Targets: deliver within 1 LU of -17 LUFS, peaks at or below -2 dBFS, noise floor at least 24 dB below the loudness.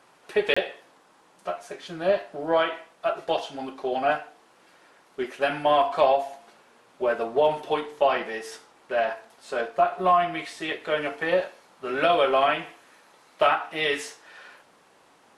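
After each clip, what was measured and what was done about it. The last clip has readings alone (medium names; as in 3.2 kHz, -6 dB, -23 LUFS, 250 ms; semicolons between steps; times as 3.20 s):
dropouts 1; longest dropout 25 ms; loudness -25.5 LUFS; peak level -7.0 dBFS; loudness target -17.0 LUFS
-> interpolate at 0.54 s, 25 ms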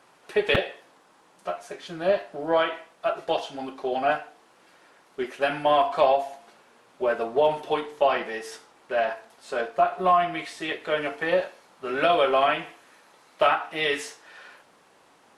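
dropouts 0; loudness -25.5 LUFS; peak level -7.0 dBFS; loudness target -17.0 LUFS
-> trim +8.5 dB; peak limiter -2 dBFS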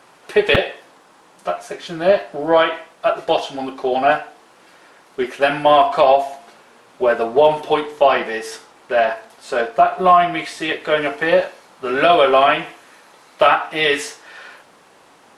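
loudness -17.0 LUFS; peak level -2.0 dBFS; noise floor -50 dBFS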